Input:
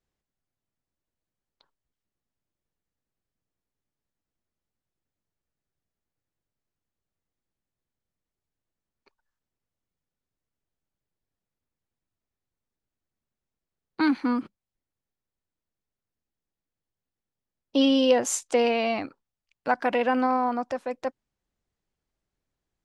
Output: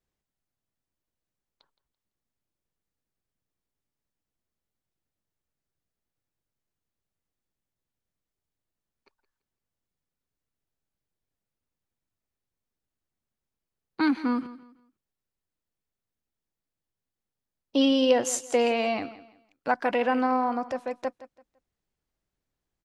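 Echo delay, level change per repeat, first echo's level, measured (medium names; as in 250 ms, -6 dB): 168 ms, -11.0 dB, -16.5 dB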